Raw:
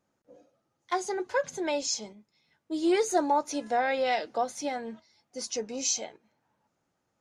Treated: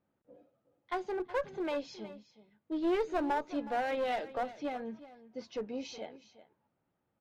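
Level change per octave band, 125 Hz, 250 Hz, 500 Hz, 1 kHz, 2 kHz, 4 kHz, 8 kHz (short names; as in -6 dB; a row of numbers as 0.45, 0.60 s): n/a, -4.0 dB, -5.0 dB, -6.5 dB, -6.5 dB, -12.0 dB, under -25 dB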